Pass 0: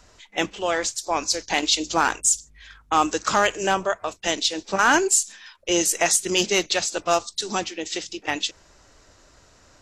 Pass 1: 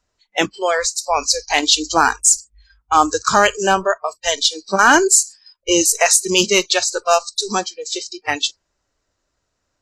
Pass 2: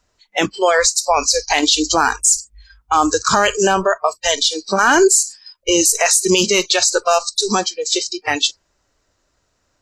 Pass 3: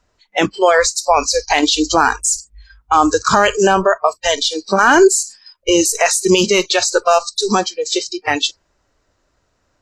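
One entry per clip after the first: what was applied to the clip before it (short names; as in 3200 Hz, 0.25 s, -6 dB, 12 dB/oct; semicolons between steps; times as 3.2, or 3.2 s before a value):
spectral noise reduction 25 dB; gain +6.5 dB
limiter -10.5 dBFS, peak gain reduction 9 dB; gain +6.5 dB
high shelf 3500 Hz -7.5 dB; gain +3 dB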